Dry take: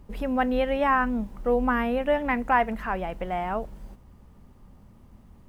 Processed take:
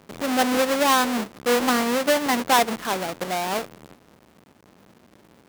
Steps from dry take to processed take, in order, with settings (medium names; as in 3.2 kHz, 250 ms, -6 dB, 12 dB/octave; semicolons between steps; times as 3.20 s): square wave that keeps the level; high-pass 200 Hz 12 dB/octave